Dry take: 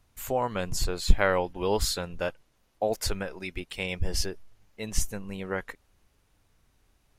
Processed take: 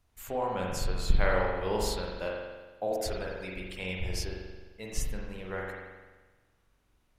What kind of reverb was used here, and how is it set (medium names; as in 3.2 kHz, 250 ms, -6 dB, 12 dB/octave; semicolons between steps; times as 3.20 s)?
spring tank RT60 1.3 s, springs 43 ms, chirp 45 ms, DRR -2 dB; trim -7 dB